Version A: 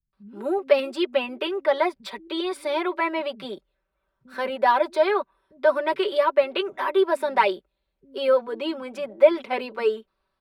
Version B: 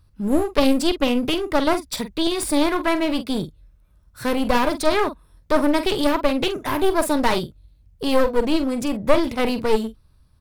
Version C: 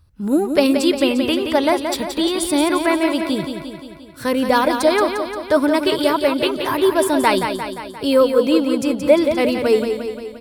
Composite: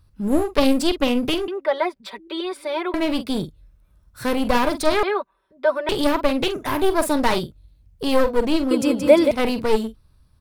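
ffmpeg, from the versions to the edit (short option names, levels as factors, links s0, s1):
-filter_complex "[0:a]asplit=2[s0][s1];[1:a]asplit=4[s2][s3][s4][s5];[s2]atrim=end=1.482[s6];[s0]atrim=start=1.478:end=2.942[s7];[s3]atrim=start=2.938:end=5.032[s8];[s1]atrim=start=5.028:end=5.892[s9];[s4]atrim=start=5.888:end=8.712[s10];[2:a]atrim=start=8.708:end=9.312[s11];[s5]atrim=start=9.308[s12];[s6][s7]acrossfade=d=0.004:c1=hsin:c2=hsin[s13];[s13][s8]acrossfade=d=0.004:c1=hsin:c2=hsin[s14];[s14][s9]acrossfade=d=0.004:c1=hsin:c2=hsin[s15];[s15][s10]acrossfade=d=0.004:c1=hsin:c2=hsin[s16];[s16][s11]acrossfade=d=0.004:c1=hsin:c2=hsin[s17];[s17][s12]acrossfade=d=0.004:c1=hsin:c2=hsin"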